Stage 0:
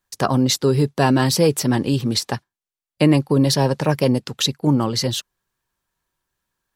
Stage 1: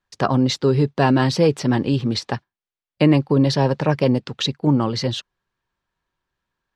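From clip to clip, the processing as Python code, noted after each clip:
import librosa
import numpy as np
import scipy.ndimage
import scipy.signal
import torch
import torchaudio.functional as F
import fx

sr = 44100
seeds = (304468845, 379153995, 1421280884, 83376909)

y = scipy.signal.sosfilt(scipy.signal.butter(2, 4000.0, 'lowpass', fs=sr, output='sos'), x)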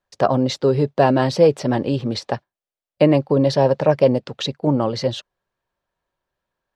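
y = fx.peak_eq(x, sr, hz=590.0, db=11.0, octaves=0.8)
y = y * librosa.db_to_amplitude(-3.0)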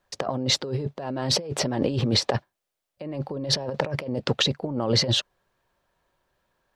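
y = fx.over_compress(x, sr, threshold_db=-27.0, ratio=-1.0)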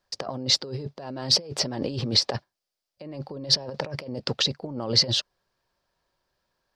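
y = fx.peak_eq(x, sr, hz=4900.0, db=11.5, octaves=0.53)
y = y * librosa.db_to_amplitude(-5.0)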